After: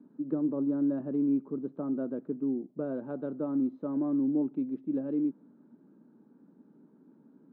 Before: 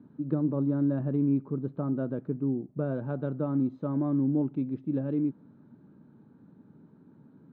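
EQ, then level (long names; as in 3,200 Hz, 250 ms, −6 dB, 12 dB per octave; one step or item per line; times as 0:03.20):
high-pass filter 230 Hz 24 dB per octave
spectral tilt −2.5 dB per octave
−4.5 dB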